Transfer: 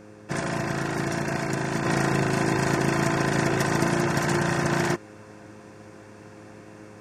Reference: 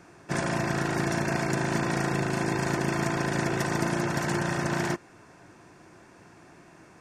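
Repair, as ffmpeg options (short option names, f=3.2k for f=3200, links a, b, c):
-af "bandreject=f=105.3:t=h:w=4,bandreject=f=210.6:t=h:w=4,bandreject=f=315.9:t=h:w=4,bandreject=f=421.2:t=h:w=4,bandreject=f=526.5:t=h:w=4,asetnsamples=n=441:p=0,asendcmd='1.85 volume volume -4dB',volume=0dB"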